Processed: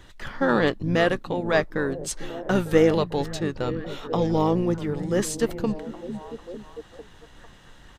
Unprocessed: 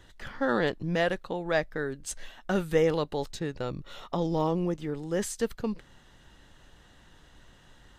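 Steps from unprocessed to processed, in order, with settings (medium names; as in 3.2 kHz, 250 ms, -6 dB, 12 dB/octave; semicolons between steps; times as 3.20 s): repeats whose band climbs or falls 450 ms, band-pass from 200 Hz, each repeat 0.7 oct, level -8 dB; harmony voices -7 st -10 dB; trim +5 dB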